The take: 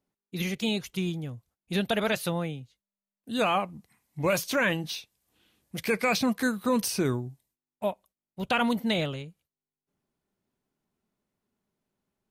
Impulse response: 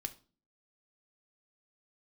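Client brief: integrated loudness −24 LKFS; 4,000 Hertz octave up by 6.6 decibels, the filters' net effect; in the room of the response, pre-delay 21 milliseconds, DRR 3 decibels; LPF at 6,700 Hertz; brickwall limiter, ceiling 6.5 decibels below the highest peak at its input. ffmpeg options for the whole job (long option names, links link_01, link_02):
-filter_complex "[0:a]lowpass=6700,equalizer=frequency=4000:width_type=o:gain=8.5,alimiter=limit=-17dB:level=0:latency=1,asplit=2[link_01][link_02];[1:a]atrim=start_sample=2205,adelay=21[link_03];[link_02][link_03]afir=irnorm=-1:irlink=0,volume=-1.5dB[link_04];[link_01][link_04]amix=inputs=2:normalize=0,volume=2.5dB"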